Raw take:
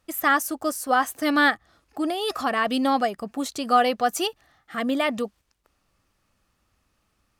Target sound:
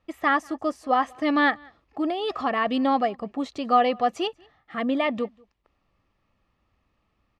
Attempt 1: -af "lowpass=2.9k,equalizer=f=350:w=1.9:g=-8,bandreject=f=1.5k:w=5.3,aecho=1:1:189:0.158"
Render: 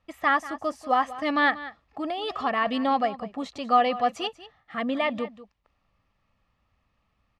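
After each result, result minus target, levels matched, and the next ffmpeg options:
echo-to-direct +12 dB; 250 Hz band -3.0 dB
-af "lowpass=2.9k,equalizer=f=350:w=1.9:g=-8,bandreject=f=1.5k:w=5.3,aecho=1:1:189:0.0398"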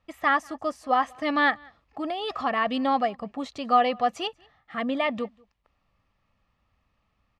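250 Hz band -3.0 dB
-af "lowpass=2.9k,bandreject=f=1.5k:w=5.3,aecho=1:1:189:0.0398"

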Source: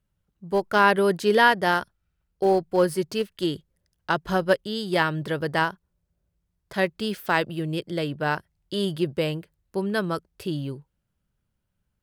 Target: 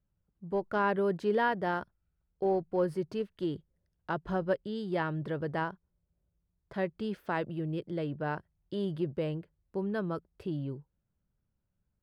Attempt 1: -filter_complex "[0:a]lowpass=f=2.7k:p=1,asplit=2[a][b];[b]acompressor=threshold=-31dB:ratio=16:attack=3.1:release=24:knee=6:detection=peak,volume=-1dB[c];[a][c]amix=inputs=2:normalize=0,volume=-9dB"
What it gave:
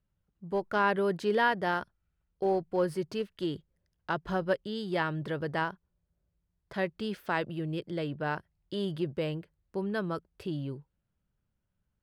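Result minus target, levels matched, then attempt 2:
2000 Hz band +3.0 dB
-filter_complex "[0:a]lowpass=f=960:p=1,asplit=2[a][b];[b]acompressor=threshold=-31dB:ratio=16:attack=3.1:release=24:knee=6:detection=peak,volume=-1dB[c];[a][c]amix=inputs=2:normalize=0,volume=-9dB"

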